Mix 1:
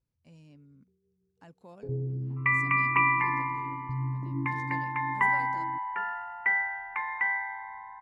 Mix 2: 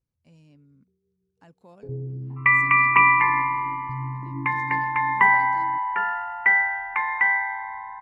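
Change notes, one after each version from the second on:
second sound +8.0 dB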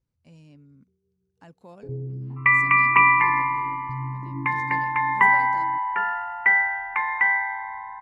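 speech +4.0 dB

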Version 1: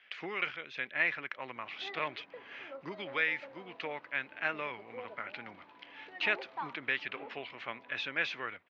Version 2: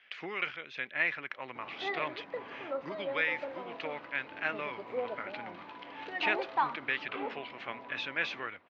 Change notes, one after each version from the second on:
background +10.5 dB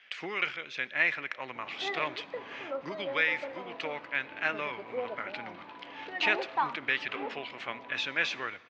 speech: remove high-frequency loss of the air 140 metres
reverb: on, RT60 1.3 s

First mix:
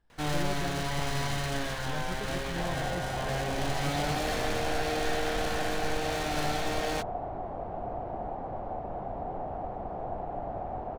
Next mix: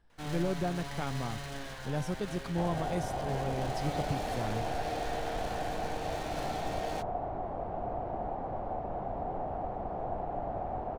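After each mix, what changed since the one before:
speech +5.0 dB
first sound −9.0 dB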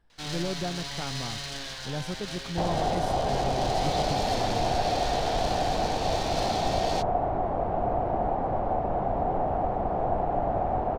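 first sound: add parametric band 4,600 Hz +14.5 dB 1.7 octaves
second sound +9.0 dB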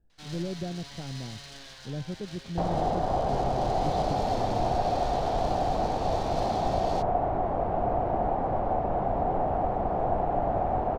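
speech: add moving average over 41 samples
first sound −9.0 dB

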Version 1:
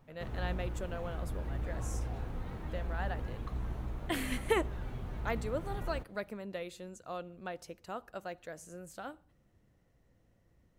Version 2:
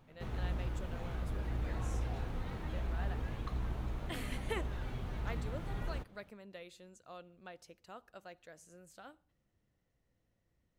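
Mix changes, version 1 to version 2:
speech −10.5 dB
master: add parametric band 3,900 Hz +5 dB 2.3 octaves

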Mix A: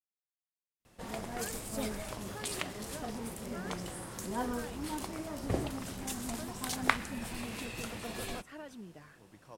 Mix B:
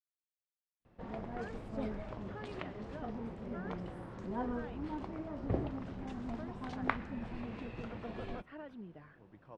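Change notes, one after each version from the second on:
speech: add high-frequency loss of the air 410 metres
background: add head-to-tape spacing loss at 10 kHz 42 dB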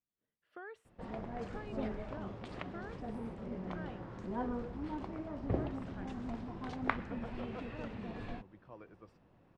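speech: entry −0.80 s

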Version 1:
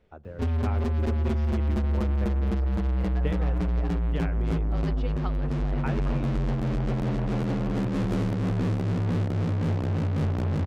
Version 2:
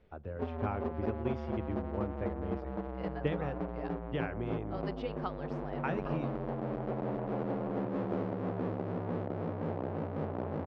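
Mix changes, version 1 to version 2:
background: add resonant band-pass 620 Hz, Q 1
master: add high-frequency loss of the air 100 metres

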